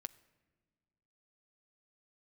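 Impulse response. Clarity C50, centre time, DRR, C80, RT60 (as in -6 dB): 19.5 dB, 2 ms, 15.0 dB, 21.0 dB, no single decay rate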